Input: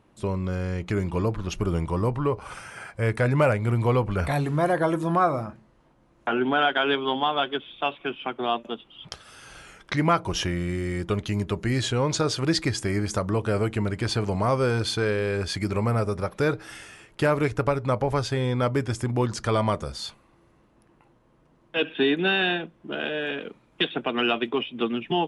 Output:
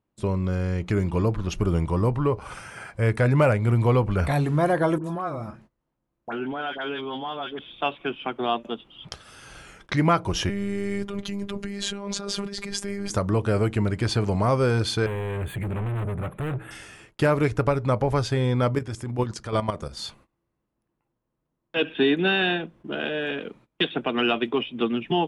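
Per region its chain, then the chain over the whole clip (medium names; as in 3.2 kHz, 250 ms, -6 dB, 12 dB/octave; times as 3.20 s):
4.98–7.59 s: compression 2:1, threshold -34 dBFS + phase dispersion highs, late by 62 ms, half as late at 1.4 kHz
10.49–13.10 s: compressor with a negative ratio -29 dBFS + robot voice 200 Hz
15.06–16.71 s: peaking EQ 130 Hz +12 dB 0.57 oct + overload inside the chain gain 29 dB + Butterworth band-stop 5.3 kHz, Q 0.87
18.75–19.97 s: bass shelf 83 Hz -4.5 dB + level held to a coarse grid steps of 11 dB
whole clip: gate -52 dBFS, range -21 dB; bass shelf 330 Hz +3.5 dB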